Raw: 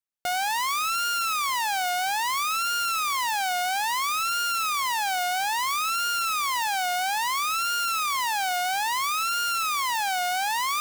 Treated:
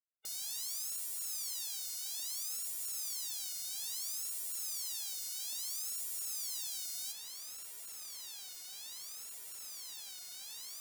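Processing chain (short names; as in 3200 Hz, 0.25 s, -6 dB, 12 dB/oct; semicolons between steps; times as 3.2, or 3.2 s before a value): limiter -32.5 dBFS, peak gain reduction 11 dB; spectral gate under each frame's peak -15 dB weak; tone controls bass -5 dB, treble +11 dB, from 7.11 s treble +3 dB; gain -4.5 dB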